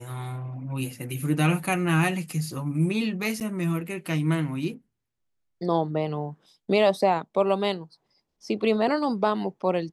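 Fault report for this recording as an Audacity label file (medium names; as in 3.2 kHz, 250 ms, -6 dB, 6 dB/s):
3.400000	3.410000	dropout 8.4 ms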